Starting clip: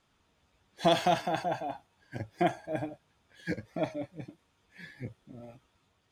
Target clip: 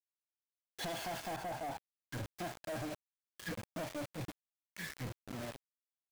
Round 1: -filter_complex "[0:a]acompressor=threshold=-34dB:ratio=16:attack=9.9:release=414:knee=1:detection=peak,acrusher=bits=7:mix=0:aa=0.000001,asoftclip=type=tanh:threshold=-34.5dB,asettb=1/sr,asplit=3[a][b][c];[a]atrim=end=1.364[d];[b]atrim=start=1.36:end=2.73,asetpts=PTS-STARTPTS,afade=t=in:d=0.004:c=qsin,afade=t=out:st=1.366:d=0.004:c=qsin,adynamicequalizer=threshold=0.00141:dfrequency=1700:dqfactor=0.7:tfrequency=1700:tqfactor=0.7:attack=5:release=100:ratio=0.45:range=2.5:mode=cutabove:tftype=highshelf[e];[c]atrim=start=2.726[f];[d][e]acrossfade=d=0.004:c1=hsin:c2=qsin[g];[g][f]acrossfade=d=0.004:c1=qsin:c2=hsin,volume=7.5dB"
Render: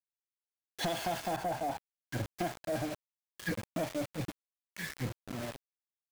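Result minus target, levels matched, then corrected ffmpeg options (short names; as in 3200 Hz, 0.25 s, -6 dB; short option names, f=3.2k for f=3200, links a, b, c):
soft clip: distortion -7 dB
-filter_complex "[0:a]acompressor=threshold=-34dB:ratio=16:attack=9.9:release=414:knee=1:detection=peak,acrusher=bits=7:mix=0:aa=0.000001,asoftclip=type=tanh:threshold=-45dB,asettb=1/sr,asplit=3[a][b][c];[a]atrim=end=1.364[d];[b]atrim=start=1.36:end=2.73,asetpts=PTS-STARTPTS,afade=t=in:d=0.004:c=qsin,afade=t=out:st=1.366:d=0.004:c=qsin,adynamicequalizer=threshold=0.00141:dfrequency=1700:dqfactor=0.7:tfrequency=1700:tqfactor=0.7:attack=5:release=100:ratio=0.45:range=2.5:mode=cutabove:tftype=highshelf[e];[c]atrim=start=2.726[f];[d][e]acrossfade=d=0.004:c1=hsin:c2=qsin[g];[g][f]acrossfade=d=0.004:c1=qsin:c2=hsin,volume=7.5dB"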